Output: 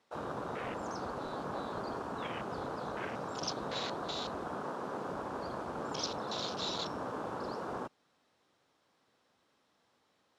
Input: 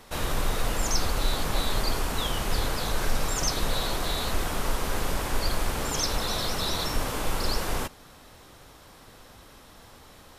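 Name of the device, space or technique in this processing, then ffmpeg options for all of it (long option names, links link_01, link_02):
over-cleaned archive recording: -filter_complex "[0:a]asettb=1/sr,asplit=3[link_01][link_02][link_03];[link_01]atrim=end=4.594[link_04];[link_02]atrim=start=4.59:end=5.07,asetpts=PTS-STARTPTS,afade=type=in:duration=0.004:curve=qsin,afade=type=out:start_time=0.476:duration=0.004:curve=qsin,highpass=93[link_05];[link_03]atrim=start=5.066[link_06];[link_04][link_05]acrossfade=duration=0.004:curve1=hsin:curve2=qsin[link_07];[link_07][link_06]acrossfade=duration=0.004:curve1=qsin:curve2=hsin,highpass=180,lowpass=6600,afwtdn=0.0224,volume=-5dB"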